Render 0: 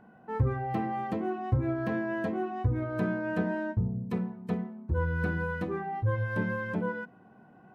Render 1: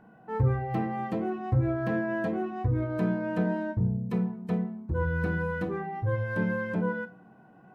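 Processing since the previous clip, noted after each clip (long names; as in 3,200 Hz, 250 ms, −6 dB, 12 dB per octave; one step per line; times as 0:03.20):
convolution reverb RT60 0.45 s, pre-delay 6 ms, DRR 9 dB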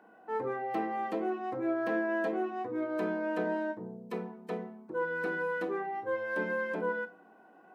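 high-pass filter 290 Hz 24 dB per octave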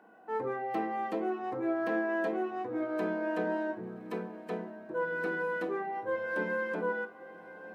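feedback delay with all-pass diffusion 1,151 ms, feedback 40%, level −15.5 dB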